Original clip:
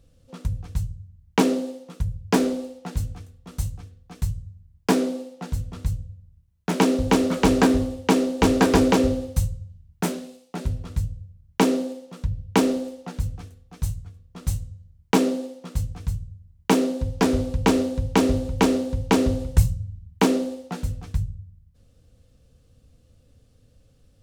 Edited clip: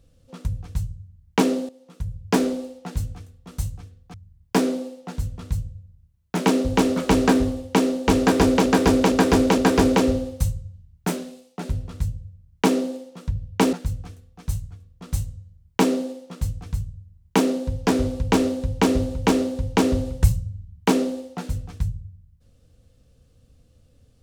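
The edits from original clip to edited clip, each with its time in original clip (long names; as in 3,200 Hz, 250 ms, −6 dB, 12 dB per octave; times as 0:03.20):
0:01.69–0:02.28: fade in linear, from −15.5 dB
0:04.14–0:04.48: remove
0:08.54–0:09.00: repeat, 4 plays
0:12.69–0:13.07: remove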